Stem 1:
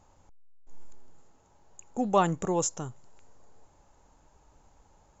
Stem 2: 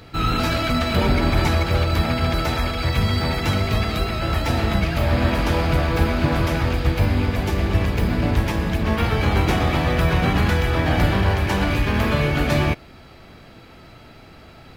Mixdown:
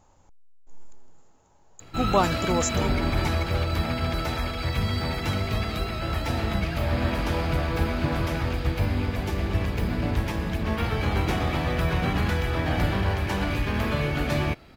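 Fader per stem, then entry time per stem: +1.5 dB, -6.0 dB; 0.00 s, 1.80 s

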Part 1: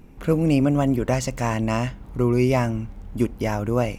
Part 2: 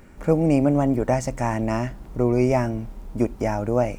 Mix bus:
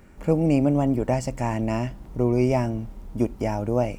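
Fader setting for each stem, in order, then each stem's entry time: -13.5 dB, -3.0 dB; 0.00 s, 0.00 s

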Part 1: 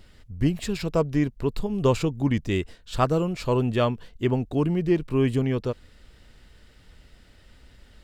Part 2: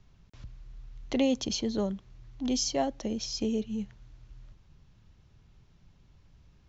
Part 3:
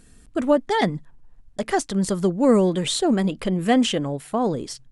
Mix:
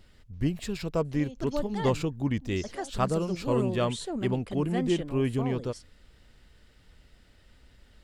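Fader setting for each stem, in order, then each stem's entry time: -5.0 dB, -18.0 dB, -14.0 dB; 0.00 s, 0.00 s, 1.05 s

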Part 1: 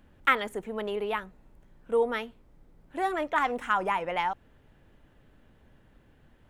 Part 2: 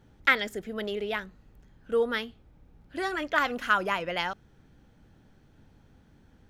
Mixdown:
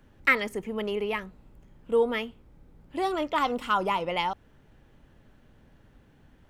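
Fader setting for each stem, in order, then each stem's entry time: 0.0 dB, -4.0 dB; 0.00 s, 0.00 s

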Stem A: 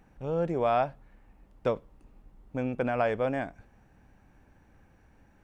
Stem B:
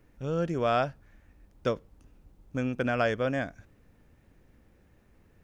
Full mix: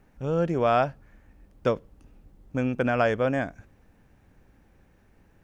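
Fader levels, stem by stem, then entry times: -3.5 dB, 0.0 dB; 0.00 s, 0.00 s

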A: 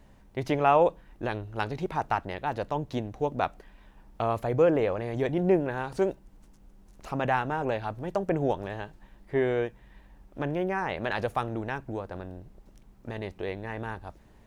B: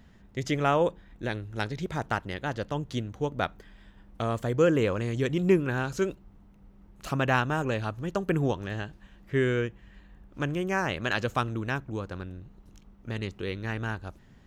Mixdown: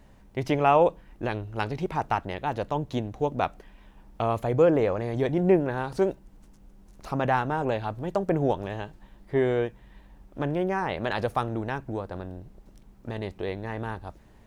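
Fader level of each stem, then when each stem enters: +1.5 dB, -15.0 dB; 0.00 s, 0.00 s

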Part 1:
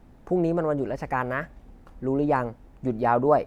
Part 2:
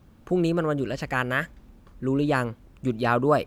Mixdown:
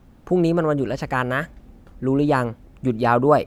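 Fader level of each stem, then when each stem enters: -2.0 dB, +0.5 dB; 0.00 s, 0.00 s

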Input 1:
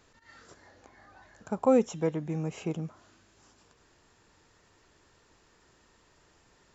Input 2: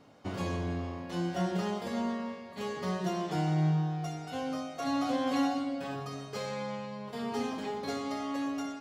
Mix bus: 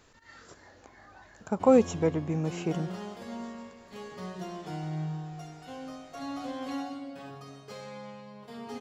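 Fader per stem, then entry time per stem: +2.5 dB, -6.5 dB; 0.00 s, 1.35 s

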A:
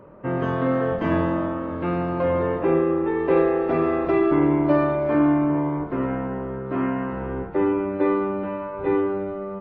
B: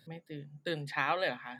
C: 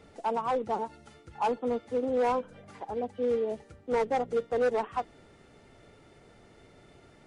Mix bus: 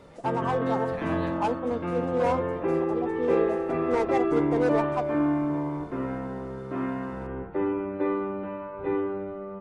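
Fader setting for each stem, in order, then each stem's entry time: -6.0 dB, -11.0 dB, +0.5 dB; 0.00 s, 0.00 s, 0.00 s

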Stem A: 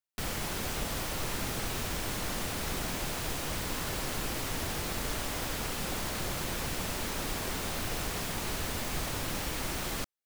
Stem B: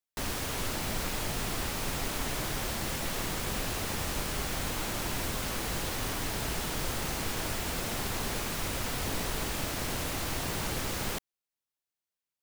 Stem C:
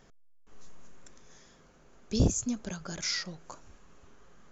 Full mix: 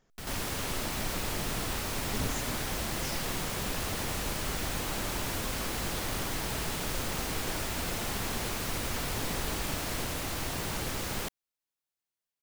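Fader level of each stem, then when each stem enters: -6.5 dB, -1.0 dB, -11.0 dB; 0.00 s, 0.10 s, 0.00 s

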